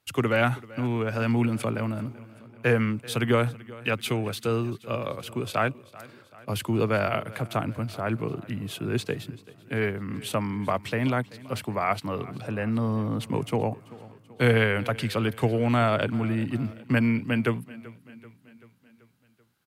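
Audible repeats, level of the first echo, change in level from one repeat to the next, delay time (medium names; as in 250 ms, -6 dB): 4, -20.0 dB, -5.0 dB, 385 ms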